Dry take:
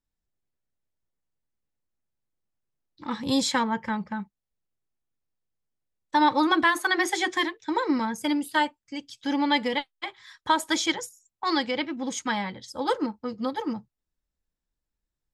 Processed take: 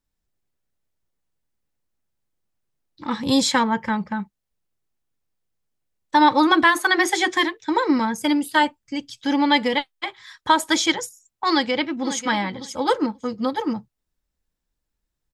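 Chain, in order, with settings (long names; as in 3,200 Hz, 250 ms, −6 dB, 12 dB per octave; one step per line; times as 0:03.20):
0:08.63–0:09.20: low-shelf EQ 200 Hz +7 dB
0:11.50–0:12.21: delay throw 540 ms, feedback 15%, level −12 dB
level +5.5 dB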